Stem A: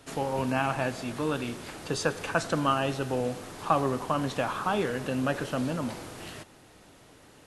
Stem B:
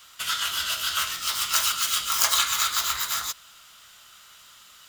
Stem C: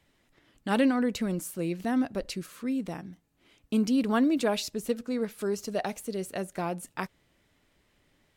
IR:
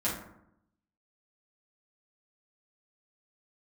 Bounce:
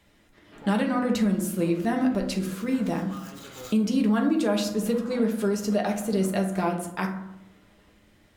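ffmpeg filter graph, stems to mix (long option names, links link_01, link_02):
-filter_complex "[0:a]lowpass=frequency=3500:width=0.5412,lowpass=frequency=3500:width=1.3066,alimiter=limit=-21dB:level=0:latency=1:release=431,asoftclip=type=tanh:threshold=-31.5dB,adelay=450,volume=-13dB,asplit=2[link_01][link_02];[link_02]volume=-4.5dB[link_03];[1:a]acompressor=threshold=-27dB:ratio=6,adelay=1050,volume=-13dB[link_04];[2:a]volume=2dB,asplit=3[link_05][link_06][link_07];[link_06]volume=-5dB[link_08];[link_07]apad=whole_len=261842[link_09];[link_04][link_09]sidechaincompress=threshold=-41dB:ratio=8:attack=7.8:release=751[link_10];[3:a]atrim=start_sample=2205[link_11];[link_03][link_08]amix=inputs=2:normalize=0[link_12];[link_12][link_11]afir=irnorm=-1:irlink=0[link_13];[link_01][link_10][link_05][link_13]amix=inputs=4:normalize=0,alimiter=limit=-14.5dB:level=0:latency=1:release=404"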